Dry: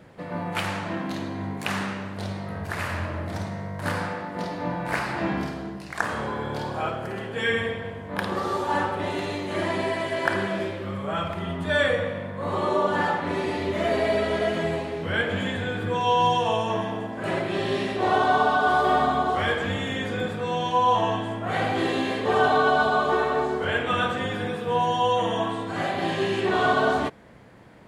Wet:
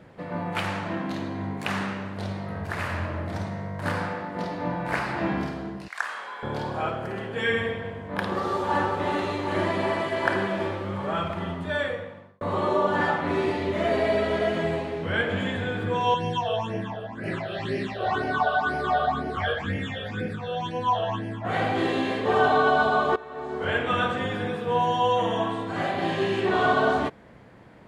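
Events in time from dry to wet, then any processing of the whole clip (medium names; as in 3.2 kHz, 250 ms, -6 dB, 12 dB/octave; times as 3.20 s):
5.88–6.43 s: high-pass 1.2 kHz
8.25–8.92 s: echo throw 380 ms, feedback 85%, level -7 dB
11.30–12.41 s: fade out
12.99–13.52 s: doubling 13 ms -5.5 dB
16.14–21.45 s: phase shifter stages 8, 2 Hz, lowest notch 270–1100 Hz
23.16–23.69 s: fade in quadratic, from -18.5 dB
whole clip: treble shelf 5.5 kHz -7.5 dB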